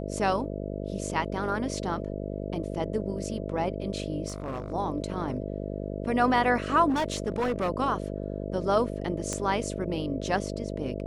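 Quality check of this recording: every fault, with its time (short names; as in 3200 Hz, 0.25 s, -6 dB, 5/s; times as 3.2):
buzz 50 Hz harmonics 13 -34 dBFS
4.28–4.73 clipped -29 dBFS
6.89–7.7 clipped -23 dBFS
9.33 pop -18 dBFS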